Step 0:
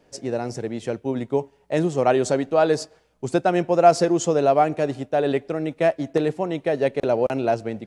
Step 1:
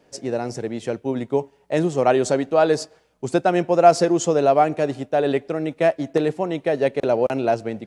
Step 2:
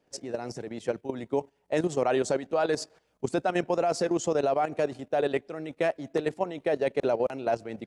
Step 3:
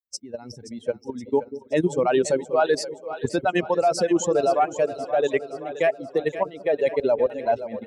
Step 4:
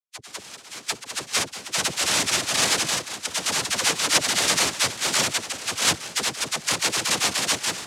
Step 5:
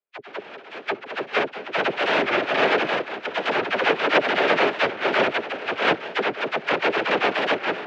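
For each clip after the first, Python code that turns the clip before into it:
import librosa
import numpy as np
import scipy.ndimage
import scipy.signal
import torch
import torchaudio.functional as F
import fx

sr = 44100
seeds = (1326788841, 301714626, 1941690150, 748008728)

y1 = fx.low_shelf(x, sr, hz=60.0, db=-9.5)
y1 = F.gain(torch.from_numpy(y1), 1.5).numpy()
y2 = fx.hpss(y1, sr, part='harmonic', gain_db=-6)
y2 = fx.level_steps(y2, sr, step_db=12)
y3 = fx.bin_expand(y2, sr, power=2.0)
y3 = fx.echo_split(y3, sr, split_hz=470.0, low_ms=190, high_ms=524, feedback_pct=52, wet_db=-12)
y3 = F.gain(torch.from_numpy(y3), 9.0).numpy()
y4 = fx.reverse_delay(y3, sr, ms=345, wet_db=-2.5)
y4 = fx.noise_vocoder(y4, sr, seeds[0], bands=1)
y4 = fx.dispersion(y4, sr, late='lows', ms=45.0, hz=560.0)
y4 = F.gain(torch.from_numpy(y4), -3.5).numpy()
y5 = fx.cabinet(y4, sr, low_hz=270.0, low_slope=12, high_hz=2400.0, hz=(410.0, 610.0, 1100.0, 2000.0), db=(7, 4, -5, -4))
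y5 = fx.record_warp(y5, sr, rpm=45.0, depth_cents=100.0)
y5 = F.gain(torch.from_numpy(y5), 7.5).numpy()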